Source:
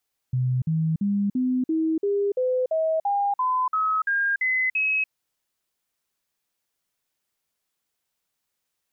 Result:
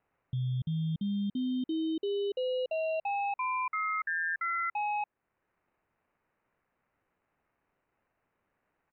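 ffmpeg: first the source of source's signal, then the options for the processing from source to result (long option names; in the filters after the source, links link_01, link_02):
-f lavfi -i "aevalsrc='0.1*clip(min(mod(t,0.34),0.29-mod(t,0.34))/0.005,0,1)*sin(2*PI*127*pow(2,floor(t/0.34)/3)*mod(t,0.34))':duration=4.76:sample_rate=44100"
-af "alimiter=level_in=4dB:limit=-24dB:level=0:latency=1:release=471,volume=-4dB,acrusher=samples=13:mix=1:aa=0.000001,aresample=8000,aresample=44100"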